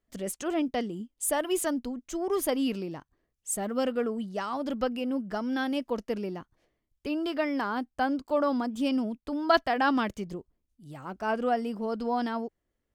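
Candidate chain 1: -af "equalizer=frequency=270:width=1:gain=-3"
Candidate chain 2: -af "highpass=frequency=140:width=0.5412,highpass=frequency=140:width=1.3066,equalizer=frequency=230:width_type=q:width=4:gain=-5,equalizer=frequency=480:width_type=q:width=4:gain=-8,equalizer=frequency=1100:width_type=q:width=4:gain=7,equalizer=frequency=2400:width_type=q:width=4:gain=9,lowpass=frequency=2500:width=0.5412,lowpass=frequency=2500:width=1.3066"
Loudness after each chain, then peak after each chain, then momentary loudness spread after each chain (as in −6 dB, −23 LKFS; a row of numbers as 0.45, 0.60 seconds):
−31.5, −31.0 LKFS; −9.5, −8.0 dBFS; 12, 16 LU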